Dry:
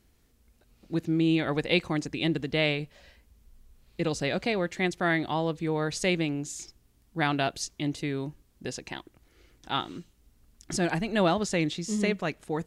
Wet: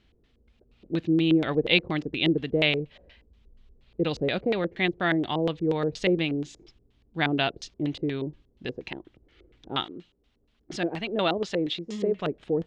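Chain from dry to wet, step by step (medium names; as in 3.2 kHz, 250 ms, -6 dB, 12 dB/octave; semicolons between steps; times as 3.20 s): 9.84–12.18 s: bass shelf 230 Hz -11 dB; LFO low-pass square 4.2 Hz 440–3300 Hz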